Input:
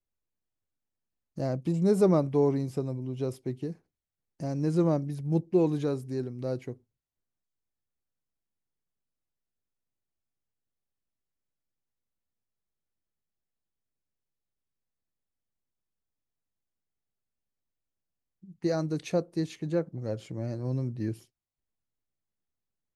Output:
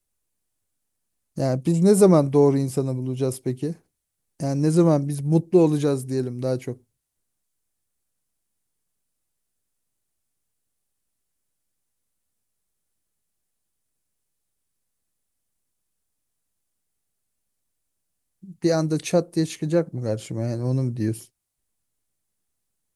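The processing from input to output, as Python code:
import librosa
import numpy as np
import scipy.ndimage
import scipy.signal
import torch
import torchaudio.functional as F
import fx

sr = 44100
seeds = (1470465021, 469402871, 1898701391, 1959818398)

y = fx.peak_eq(x, sr, hz=9800.0, db=12.0, octaves=1.0)
y = F.gain(torch.from_numpy(y), 7.5).numpy()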